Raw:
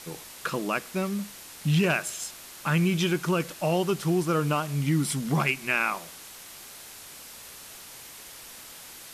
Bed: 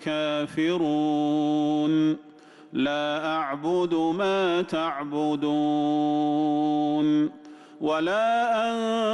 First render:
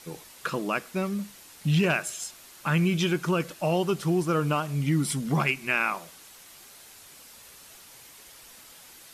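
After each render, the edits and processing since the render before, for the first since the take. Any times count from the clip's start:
broadband denoise 6 dB, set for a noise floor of −45 dBFS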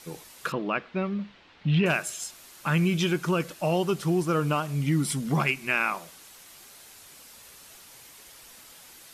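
0:00.52–0:01.86: low-pass filter 3,600 Hz 24 dB per octave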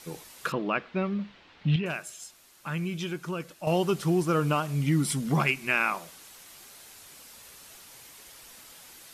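0:01.76–0:03.67: clip gain −8 dB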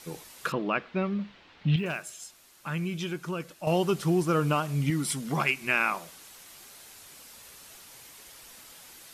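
0:01.77–0:02.20: one scale factor per block 7 bits
0:04.90–0:05.61: low-shelf EQ 260 Hz −8 dB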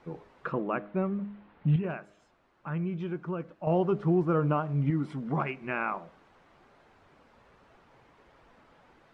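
low-pass filter 1,200 Hz 12 dB per octave
hum removal 102.7 Hz, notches 7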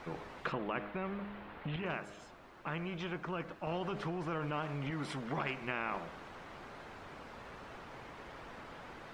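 brickwall limiter −22.5 dBFS, peak gain reduction 7 dB
every bin compressed towards the loudest bin 2 to 1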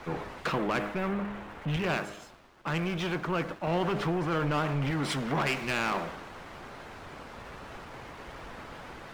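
leveller curve on the samples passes 3
multiband upward and downward expander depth 70%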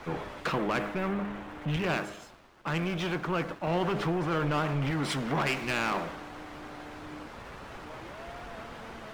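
mix in bed −25 dB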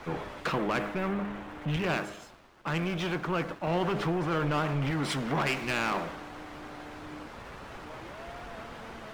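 no processing that can be heard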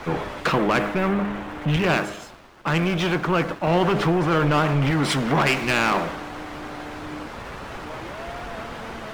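level +9 dB

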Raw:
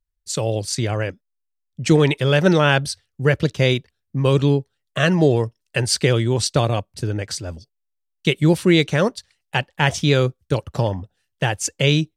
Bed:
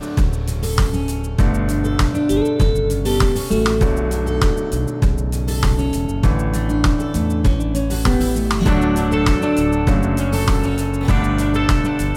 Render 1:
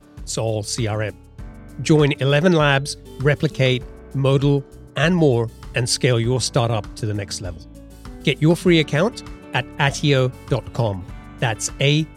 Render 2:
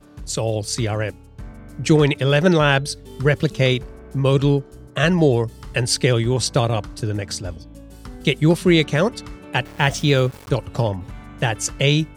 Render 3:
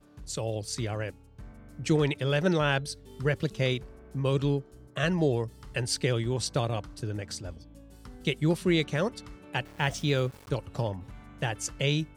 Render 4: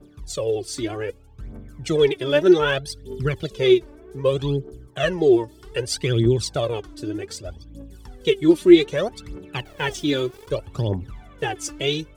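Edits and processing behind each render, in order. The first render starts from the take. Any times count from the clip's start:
mix in bed −21.5 dB
0:09.65–0:10.49: centre clipping without the shift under −36 dBFS
level −10 dB
phase shifter 0.64 Hz, delay 3.5 ms, feedback 74%; hollow resonant body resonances 380/3,400 Hz, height 10 dB, ringing for 25 ms

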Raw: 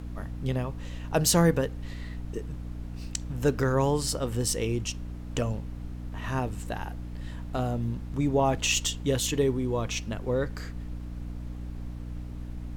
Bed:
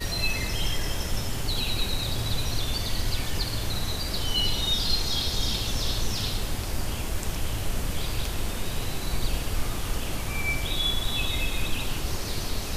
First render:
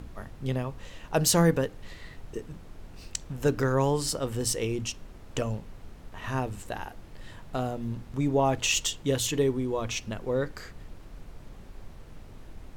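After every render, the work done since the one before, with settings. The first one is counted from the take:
mains-hum notches 60/120/180/240/300 Hz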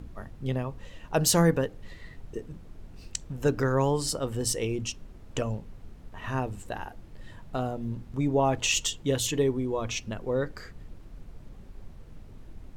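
broadband denoise 6 dB, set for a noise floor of −47 dBFS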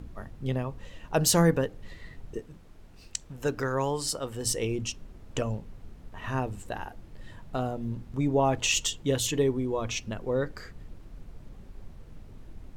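0:02.40–0:04.45: low-shelf EQ 450 Hz −7 dB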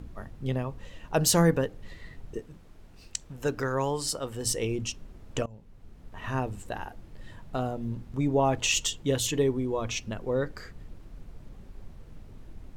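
0:05.46–0:06.18: fade in, from −21.5 dB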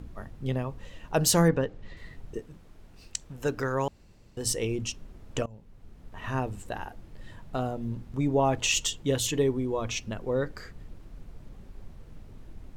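0:01.48–0:01.97: high-frequency loss of the air 91 metres
0:03.88–0:04.37: fill with room tone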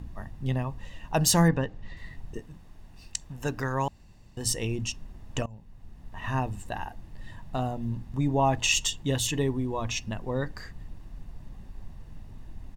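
comb filter 1.1 ms, depth 46%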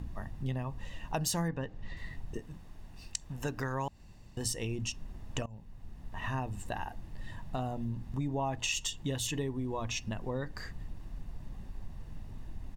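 downward compressor 3 to 1, threshold −33 dBFS, peak gain reduction 12.5 dB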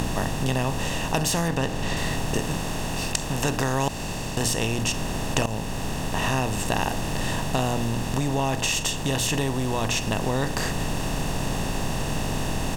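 compressor on every frequency bin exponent 0.4
in parallel at −1 dB: speech leveller within 3 dB 0.5 s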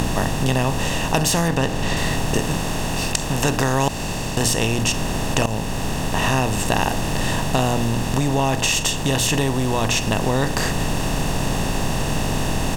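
level +5 dB
brickwall limiter −3 dBFS, peak gain reduction 2.5 dB

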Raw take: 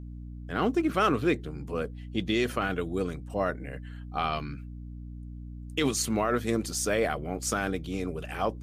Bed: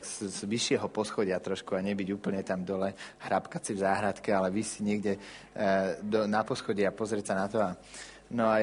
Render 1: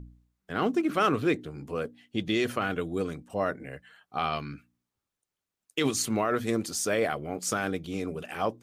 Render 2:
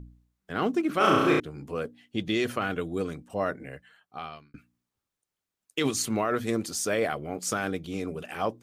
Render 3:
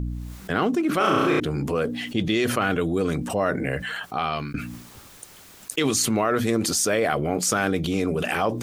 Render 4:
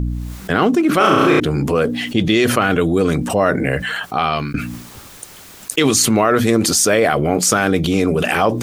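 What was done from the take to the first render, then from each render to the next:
hum removal 60 Hz, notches 5
0:00.97–0:01.40: flutter between parallel walls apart 5.7 metres, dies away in 1.2 s; 0:03.67–0:04.54: fade out
envelope flattener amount 70%
level +8 dB; brickwall limiter −2 dBFS, peak gain reduction 2 dB

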